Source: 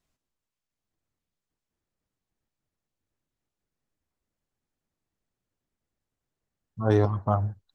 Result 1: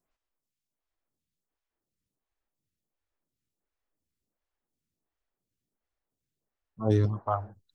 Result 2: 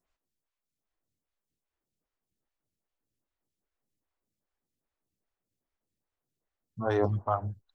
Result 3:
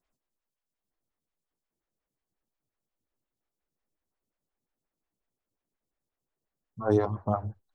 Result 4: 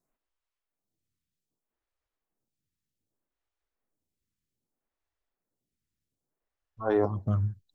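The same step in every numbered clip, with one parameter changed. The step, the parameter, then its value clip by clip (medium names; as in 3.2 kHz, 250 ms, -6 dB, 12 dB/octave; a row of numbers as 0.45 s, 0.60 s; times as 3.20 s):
lamp-driven phase shifter, rate: 1.4 Hz, 2.5 Hz, 5.6 Hz, 0.64 Hz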